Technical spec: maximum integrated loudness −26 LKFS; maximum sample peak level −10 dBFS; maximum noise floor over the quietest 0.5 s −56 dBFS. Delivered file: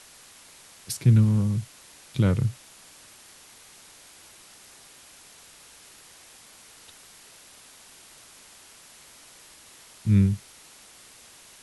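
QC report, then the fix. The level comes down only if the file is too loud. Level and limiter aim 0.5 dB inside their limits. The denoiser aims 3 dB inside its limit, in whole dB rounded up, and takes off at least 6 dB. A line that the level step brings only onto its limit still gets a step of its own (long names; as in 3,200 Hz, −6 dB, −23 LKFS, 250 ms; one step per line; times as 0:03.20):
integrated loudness −24.0 LKFS: out of spec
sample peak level −9.0 dBFS: out of spec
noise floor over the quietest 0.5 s −51 dBFS: out of spec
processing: broadband denoise 6 dB, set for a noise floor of −51 dBFS
level −2.5 dB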